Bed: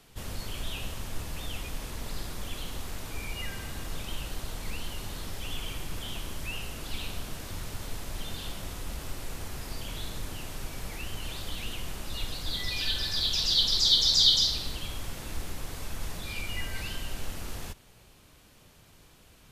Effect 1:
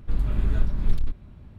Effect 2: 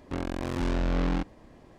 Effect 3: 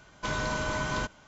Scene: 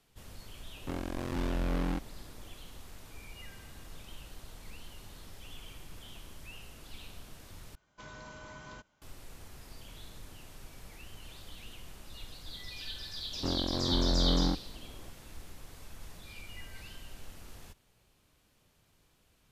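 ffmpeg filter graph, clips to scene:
-filter_complex "[2:a]asplit=2[a][b];[0:a]volume=-12dB[c];[b]lowpass=1.3k[d];[c]asplit=2[e][f];[e]atrim=end=7.754[g];[3:a]atrim=end=1.27,asetpts=PTS-STARTPTS,volume=-17.5dB[h];[f]atrim=start=9.016[i];[a]atrim=end=1.78,asetpts=PTS-STARTPTS,volume=-5dB,afade=t=in:d=0.004:c=hsin,afade=t=out:st=1.776:d=0.004:c=hsin,adelay=760[j];[d]atrim=end=1.78,asetpts=PTS-STARTPTS,volume=-1dB,afade=t=in:d=0.004:c=hsin,afade=t=out:st=1.776:d=0.004:c=hsin,adelay=587412S[k];[g][h]acrossfade=d=0.004:c1=hsin:c2=hsin[l];[l][i]acrossfade=d=0.004:c1=hsin:c2=hsin[m];[m][j][k]amix=inputs=3:normalize=0"

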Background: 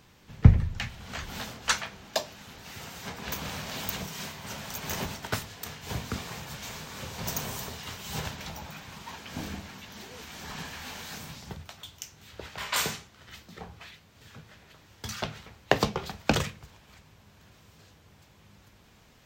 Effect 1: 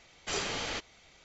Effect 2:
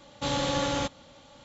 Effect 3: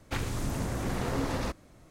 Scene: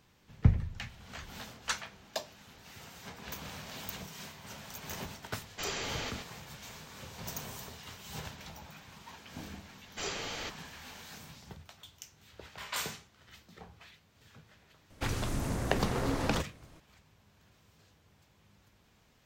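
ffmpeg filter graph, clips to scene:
-filter_complex "[1:a]asplit=2[a][b];[0:a]volume=-8dB[c];[a]aecho=1:1:127:0.447,atrim=end=1.24,asetpts=PTS-STARTPTS,volume=-3.5dB,afade=t=in:d=0.004:c=hsin,afade=t=out:st=1.236:d=0.004:c=hsin,adelay=5310[d];[b]atrim=end=1.24,asetpts=PTS-STARTPTS,volume=-4dB,afade=t=in:d=0.004:c=hsin,afade=t=out:st=1.236:d=0.004:c=hsin,adelay=427770S[e];[3:a]atrim=end=1.9,asetpts=PTS-STARTPTS,volume=-1.5dB,afade=t=in:d=0.004:c=hsin,afade=t=out:st=1.896:d=0.004:c=hsin,adelay=14900[f];[c][d][e][f]amix=inputs=4:normalize=0"

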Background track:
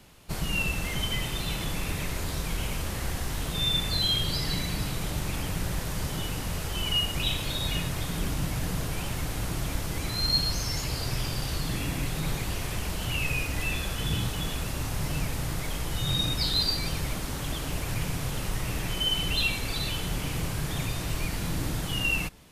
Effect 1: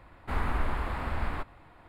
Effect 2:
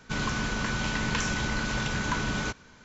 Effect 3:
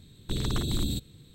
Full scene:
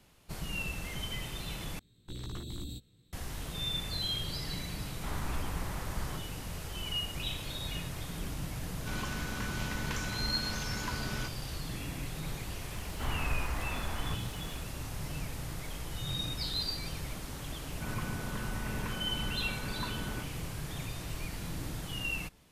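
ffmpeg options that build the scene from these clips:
-filter_complex "[1:a]asplit=2[a][b];[2:a]asplit=2[c][d];[0:a]volume=-8.5dB[e];[3:a]asplit=2[f][g];[g]adelay=17,volume=-4.5dB[h];[f][h]amix=inputs=2:normalize=0[i];[b]aeval=exprs='val(0)+0.5*0.00668*sgn(val(0))':c=same[j];[d]lowpass=1.5k[k];[e]asplit=2[l][m];[l]atrim=end=1.794[n];[i]atrim=end=1.34,asetpts=PTS-STARTPTS,volume=-13.5dB[o];[m]atrim=start=3.126[p];[a]atrim=end=1.88,asetpts=PTS-STARTPTS,volume=-8.5dB,afade=t=in:d=0.004:c=hsin,afade=t=out:st=1.876:d=0.004:c=hsin,adelay=4750[q];[c]atrim=end=2.84,asetpts=PTS-STARTPTS,volume=-9dB,afade=t=in:d=0.004:c=hsin,afade=t=out:st=2.836:d=0.004:c=hsin,adelay=8760[r];[j]atrim=end=1.88,asetpts=PTS-STARTPTS,volume=-6dB,afade=t=in:d=0.004:c=hsin,afade=t=out:st=1.876:d=0.004:c=hsin,adelay=12720[s];[k]atrim=end=2.84,asetpts=PTS-STARTPTS,volume=-9dB,afade=t=in:d=0.004:c=hsin,afade=t=out:st=2.836:d=0.004:c=hsin,adelay=17710[t];[n][o]acrossfade=d=0.004:c1=hsin:c2=hsin[u];[u][p]acrossfade=d=0.004:c1=hsin:c2=hsin[v];[v][q][r][s][t]amix=inputs=5:normalize=0"

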